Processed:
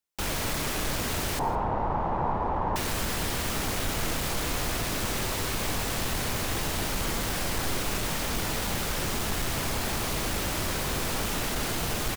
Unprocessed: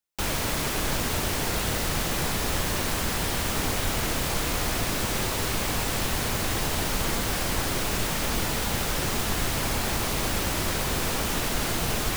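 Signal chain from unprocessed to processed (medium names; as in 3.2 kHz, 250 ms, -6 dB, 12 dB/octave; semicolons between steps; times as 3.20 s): in parallel at -11.5 dB: sine folder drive 9 dB, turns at -12.5 dBFS; 1.39–2.76 s: on the sum: resonant low-pass 910 Hz, resonance Q 4.9; delay 161 ms -21.5 dB; reverberation RT60 1.7 s, pre-delay 60 ms, DRR 13 dB; trim -8 dB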